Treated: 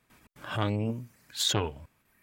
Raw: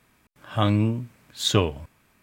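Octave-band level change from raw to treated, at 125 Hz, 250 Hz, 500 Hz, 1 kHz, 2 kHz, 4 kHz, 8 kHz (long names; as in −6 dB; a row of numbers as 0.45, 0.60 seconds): −8.5, −9.0, −7.5, −6.0, −3.5, −3.0, −0.5 decibels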